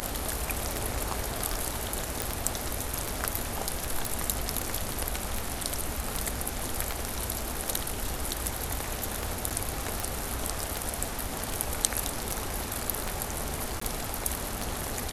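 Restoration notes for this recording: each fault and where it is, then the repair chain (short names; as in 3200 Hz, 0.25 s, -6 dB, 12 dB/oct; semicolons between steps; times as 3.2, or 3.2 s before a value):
tick 78 rpm -14 dBFS
2.22 pop
4.05 pop
9.5–9.51 gap 7.3 ms
13.8–13.81 gap 14 ms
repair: de-click; interpolate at 9.5, 7.3 ms; interpolate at 13.8, 14 ms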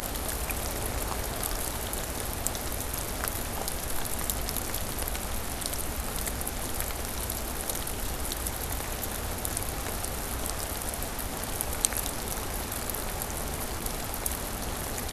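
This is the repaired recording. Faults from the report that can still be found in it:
none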